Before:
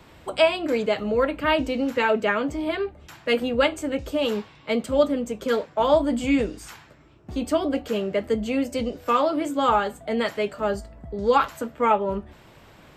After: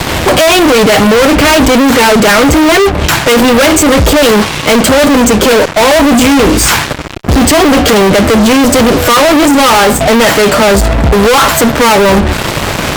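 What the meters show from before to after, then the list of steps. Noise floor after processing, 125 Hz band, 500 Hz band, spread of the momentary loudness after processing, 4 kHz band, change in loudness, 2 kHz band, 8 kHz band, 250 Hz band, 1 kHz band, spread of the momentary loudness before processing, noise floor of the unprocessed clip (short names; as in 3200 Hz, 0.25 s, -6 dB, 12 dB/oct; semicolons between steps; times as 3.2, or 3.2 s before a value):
-16 dBFS, +25.0 dB, +16.0 dB, 4 LU, +22.5 dB, +17.5 dB, +20.0 dB, +32.0 dB, +19.0 dB, +16.5 dB, 9 LU, -52 dBFS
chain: in parallel at +1 dB: compressor, threshold -33 dBFS, peak gain reduction 18.5 dB; on the sum: fuzz box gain 44 dB, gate -44 dBFS; gain +8.5 dB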